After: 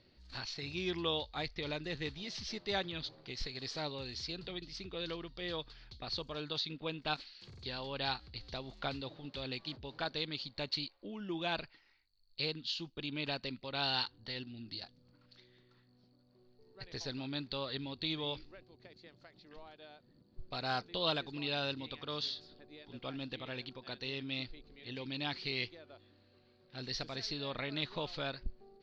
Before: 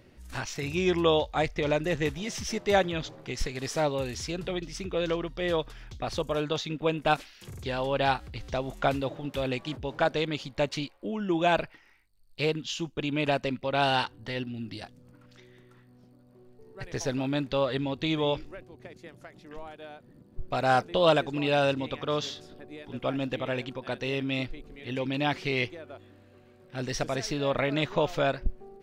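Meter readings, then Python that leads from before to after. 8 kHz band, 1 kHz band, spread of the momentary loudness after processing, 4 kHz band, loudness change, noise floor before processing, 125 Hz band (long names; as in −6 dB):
−14.0 dB, −13.0 dB, 15 LU, −2.5 dB, −10.0 dB, −57 dBFS, −11.5 dB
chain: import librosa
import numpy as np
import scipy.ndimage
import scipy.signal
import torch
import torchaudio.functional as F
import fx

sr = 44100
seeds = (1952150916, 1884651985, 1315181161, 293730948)

y = fx.dynamic_eq(x, sr, hz=600.0, q=1.9, threshold_db=-40.0, ratio=4.0, max_db=-5)
y = fx.ladder_lowpass(y, sr, hz=4600.0, resonance_pct=80)
y = F.gain(torch.from_numpy(y), 1.0).numpy()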